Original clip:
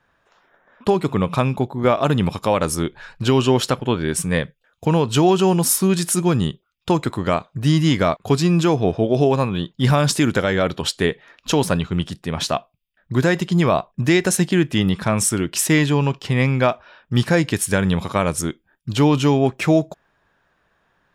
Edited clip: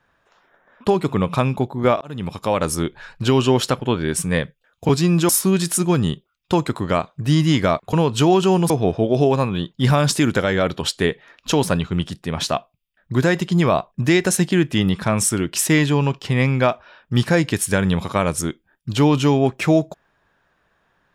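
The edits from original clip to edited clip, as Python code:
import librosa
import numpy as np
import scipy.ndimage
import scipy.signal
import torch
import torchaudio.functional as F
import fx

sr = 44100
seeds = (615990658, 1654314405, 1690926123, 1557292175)

y = fx.edit(x, sr, fx.fade_in_span(start_s=2.01, length_s=0.81, curve='qsin'),
    fx.swap(start_s=4.89, length_s=0.77, other_s=8.3, other_length_s=0.4), tone=tone)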